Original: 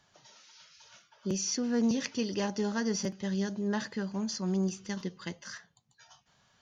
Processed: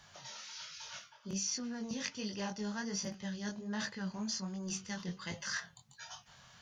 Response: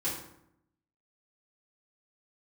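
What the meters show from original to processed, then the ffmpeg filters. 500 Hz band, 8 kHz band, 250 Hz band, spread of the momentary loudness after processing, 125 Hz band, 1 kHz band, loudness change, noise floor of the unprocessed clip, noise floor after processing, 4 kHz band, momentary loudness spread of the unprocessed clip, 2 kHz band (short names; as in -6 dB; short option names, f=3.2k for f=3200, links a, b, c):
-11.5 dB, n/a, -8.5 dB, 12 LU, -7.0 dB, -4.5 dB, -7.5 dB, -70 dBFS, -62 dBFS, -1.5 dB, 12 LU, -1.0 dB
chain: -af "areverse,acompressor=threshold=-43dB:ratio=6,areverse,equalizer=f=340:t=o:w=1.2:g=-9.5,flanger=delay=19:depth=4.8:speed=1.3,volume=12dB"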